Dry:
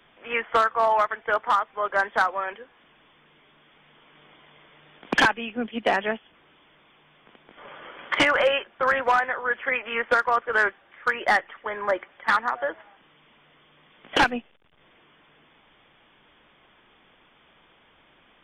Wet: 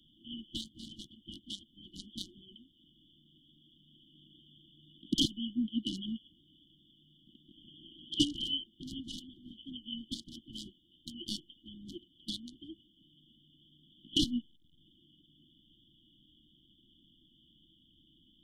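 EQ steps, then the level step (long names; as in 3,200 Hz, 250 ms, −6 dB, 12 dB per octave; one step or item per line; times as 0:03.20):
linear-phase brick-wall band-stop 350–2,900 Hz
−1.5 dB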